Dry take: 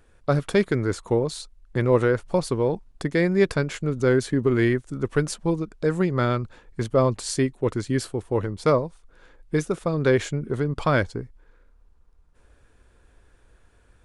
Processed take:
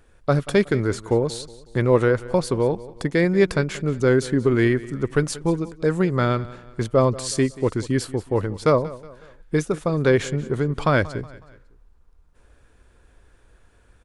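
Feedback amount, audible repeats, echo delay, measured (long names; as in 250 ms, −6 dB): 42%, 3, 184 ms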